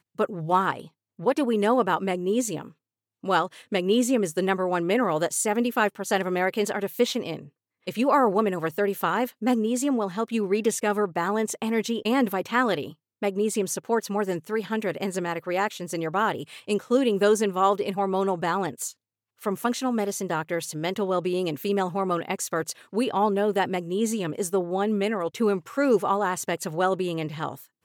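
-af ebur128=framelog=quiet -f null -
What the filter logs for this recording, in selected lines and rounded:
Integrated loudness:
  I:         -25.6 LUFS
  Threshold: -35.8 LUFS
Loudness range:
  LRA:         3.0 LU
  Threshold: -45.8 LUFS
  LRA low:   -27.6 LUFS
  LRA high:  -24.6 LUFS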